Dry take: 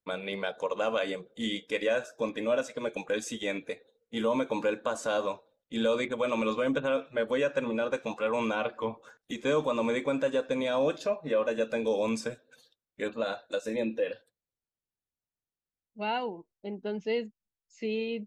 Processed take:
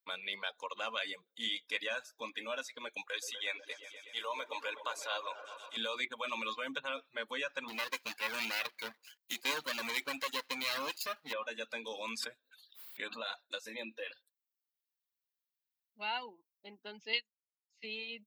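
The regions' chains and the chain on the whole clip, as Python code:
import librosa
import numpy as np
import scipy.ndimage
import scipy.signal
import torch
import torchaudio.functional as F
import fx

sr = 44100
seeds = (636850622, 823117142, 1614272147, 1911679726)

y = fx.chain(x, sr, fx.highpass(hz=390.0, slope=24),
    fx.echo_opening(ms=123, hz=750, octaves=1, feedback_pct=70, wet_db=-6), at=(3.07, 5.77))
y = fx.chain(y, sr, fx.lower_of_two(delay_ms=0.44),
    fx.high_shelf(hz=4400.0, db=11.0), at=(7.68, 11.33))
y = fx.chain(y, sr, fx.peak_eq(hz=6000.0, db=-11.0, octaves=0.22),
    fx.pre_swell(db_per_s=110.0), at=(12.19, 13.29))
y = fx.chain(y, sr, fx.weighting(curve='D'),
    fx.upward_expand(threshold_db=-40.0, expansion=2.5), at=(17.13, 17.84))
y = np.diff(y, prepend=0.0)
y = fx.dereverb_blind(y, sr, rt60_s=0.58)
y = fx.graphic_eq(y, sr, hz=(125, 250, 1000, 2000, 4000, 8000), db=(4, 9, 8, 4, 6, -11))
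y = y * librosa.db_to_amplitude(3.5)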